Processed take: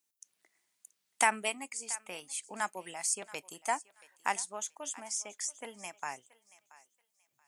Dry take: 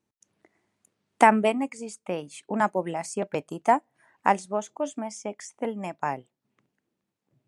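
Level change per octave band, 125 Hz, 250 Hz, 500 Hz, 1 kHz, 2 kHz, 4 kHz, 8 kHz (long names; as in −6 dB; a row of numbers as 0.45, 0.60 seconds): −21.0, −20.0, −15.5, −11.0, −4.5, +1.0, +7.0 decibels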